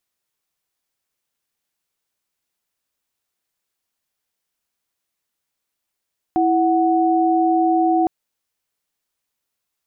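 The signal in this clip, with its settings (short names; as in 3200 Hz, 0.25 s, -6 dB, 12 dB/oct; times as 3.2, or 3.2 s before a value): chord E4/F#5 sine, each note -16.5 dBFS 1.71 s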